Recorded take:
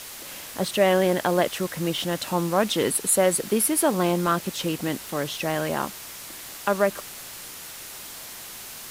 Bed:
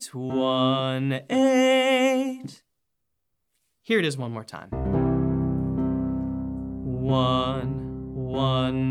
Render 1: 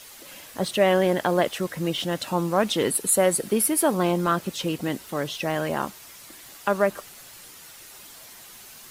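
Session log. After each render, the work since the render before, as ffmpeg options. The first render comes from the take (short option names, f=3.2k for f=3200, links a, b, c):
-af "afftdn=nr=8:nf=-40"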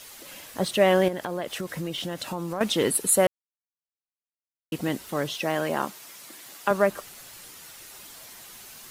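-filter_complex "[0:a]asettb=1/sr,asplit=3[a][b][c];[a]atrim=end=1.084[d];[b]atrim=start=1.08:end=2.61,asetpts=PTS-STARTPTS,afade=t=in:d=0.004:c=qsin,afade=t=out:st=1.526:d=0.004:c=qsin,acompressor=threshold=-28dB:ratio=4:attack=3.2:release=140:knee=1:detection=peak[e];[c]atrim=start=2.606[f];[d][e]acrossfade=d=0.004:c1=hsin:c2=qsin[g];[g][f]acrossfade=d=0.004:c1=qsin:c2=hsin,asettb=1/sr,asplit=3[h][i][j];[h]atrim=end=5.344[k];[i]atrim=start=5.34:end=6.71,asetpts=PTS-STARTPTS,afade=t=in:d=0.004:c=qsin,afade=t=out:st=1.366:d=0.004:c=qsin,highpass=170[l];[j]atrim=start=6.706[m];[k][l]acrossfade=d=0.004:c1=hsin:c2=qsin[n];[n][m]acrossfade=d=0.004:c1=qsin:c2=hsin,asplit=3[o][p][q];[o]atrim=end=3.27,asetpts=PTS-STARTPTS,afade=t=out:st=3.266:d=0.004:c=hsin[r];[p]atrim=start=3.27:end=4.72,asetpts=PTS-STARTPTS,volume=0[s];[q]atrim=start=4.72,asetpts=PTS-STARTPTS,afade=t=in:d=0.004:c=hsin[t];[r][s][t]concat=n=3:v=0:a=1"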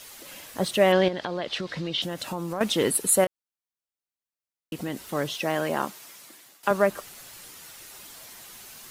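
-filter_complex "[0:a]asettb=1/sr,asplit=3[a][b][c];[a]atrim=end=0.924[d];[b]atrim=start=0.92:end=2.02,asetpts=PTS-STARTPTS,afade=t=in:d=0.004:c=qsin,afade=t=out:st=1.096:d=0.004:c=qsin,lowpass=f=4.2k:t=q:w=2.5[e];[c]atrim=start=2.016[f];[d][e]acrossfade=d=0.004:c1=hsin:c2=qsin[g];[g][f]acrossfade=d=0.004:c1=qsin:c2=hsin,asettb=1/sr,asplit=3[h][i][j];[h]atrim=end=3.244[k];[i]atrim=start=3.24:end=4.97,asetpts=PTS-STARTPTS,afade=t=in:d=0.004:c=qsin,afade=t=out:st=1.726:d=0.004:c=qsin,acompressor=threshold=-30dB:ratio=2:attack=3.2:release=140:knee=1:detection=peak[l];[j]atrim=start=4.966[m];[k][l]acrossfade=d=0.004:c1=hsin:c2=qsin[n];[n][m]acrossfade=d=0.004:c1=qsin:c2=hsin,asplit=2[o][p];[o]atrim=end=6.63,asetpts=PTS-STARTPTS,afade=t=out:st=5.77:d=0.86:c=qsin:silence=0.177828[q];[p]atrim=start=6.63,asetpts=PTS-STARTPTS,afade=t=in:d=0.004:c=hsin:silence=0.177828[r];[q][r]concat=n=2:v=0:a=1"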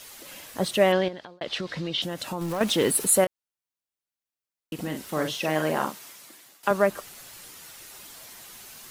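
-filter_complex "[0:a]asettb=1/sr,asplit=3[a][b][c];[a]atrim=end=2.414[d];[b]atrim=start=2.41:end=3.2,asetpts=PTS-STARTPTS,afade=t=in:d=0.004:c=qsin,afade=t=out:st=0.786:d=0.004:c=qsin,aeval=exprs='val(0)+0.5*0.0211*sgn(val(0))':c=same[e];[c]atrim=start=3.196[f];[d][e]acrossfade=d=0.004:c1=hsin:c2=qsin[g];[g][f]acrossfade=d=0.004:c1=qsin:c2=hsin,asettb=1/sr,asplit=3[h][i][j];[h]atrim=end=4.744[k];[i]atrim=start=4.74:end=6.13,asetpts=PTS-STARTPTS,afade=t=in:d=0.004:c=qsin,afade=t=out:st=1.386:d=0.004:c=qsin,asplit=2[l][m];[m]adelay=45,volume=-5.5dB[n];[l][n]amix=inputs=2:normalize=0,atrim=end_sample=61299[o];[j]atrim=start=6.126[p];[k][o]acrossfade=d=0.004:c1=hsin:c2=qsin[q];[q][p]acrossfade=d=0.004:c1=qsin:c2=hsin,asplit=2[r][s];[r]atrim=end=1.41,asetpts=PTS-STARTPTS,afade=t=out:st=0.82:d=0.59[t];[s]atrim=start=1.41,asetpts=PTS-STARTPTS,afade=t=in:d=0.004:c=hsin[u];[t][u]concat=n=2:v=0:a=1"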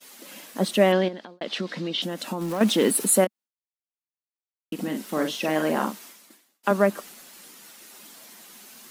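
-af "lowshelf=f=150:t=q:w=3:g=-12,agate=range=-33dB:threshold=-42dB:ratio=3:detection=peak"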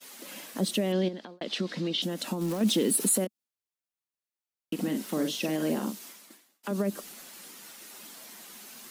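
-filter_complex "[0:a]alimiter=limit=-14.5dB:level=0:latency=1:release=60,acrossover=split=460|3000[a][b][c];[b]acompressor=threshold=-40dB:ratio=6[d];[a][d][c]amix=inputs=3:normalize=0"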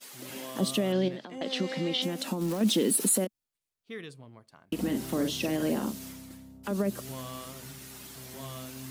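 -filter_complex "[1:a]volume=-19dB[a];[0:a][a]amix=inputs=2:normalize=0"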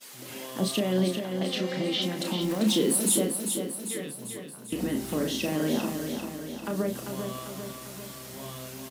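-filter_complex "[0:a]asplit=2[a][b];[b]adelay=33,volume=-6dB[c];[a][c]amix=inputs=2:normalize=0,aecho=1:1:395|790|1185|1580|1975|2370|2765|3160:0.473|0.274|0.159|0.0923|0.0535|0.0311|0.018|0.0104"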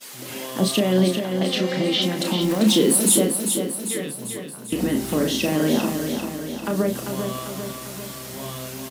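-af "volume=7dB"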